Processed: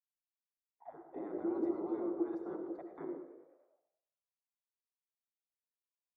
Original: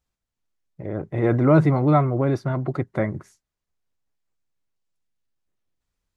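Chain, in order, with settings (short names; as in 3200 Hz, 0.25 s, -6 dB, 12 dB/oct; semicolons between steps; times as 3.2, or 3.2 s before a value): spectral gate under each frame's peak -20 dB weak; expander -45 dBFS; bell 2400 Hz -14 dB 1.1 oct; in parallel at +2 dB: level quantiser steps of 22 dB; on the sum: limiter -30 dBFS, peak gain reduction 9.5 dB; vocal rider 2 s; auto-wah 340–1000 Hz, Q 13, down, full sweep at -46.5 dBFS; frequency-shifting echo 0.103 s, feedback 62%, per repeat +47 Hz, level -16.5 dB; reverb RT60 0.75 s, pre-delay 57 ms, DRR 6.5 dB; gain +16.5 dB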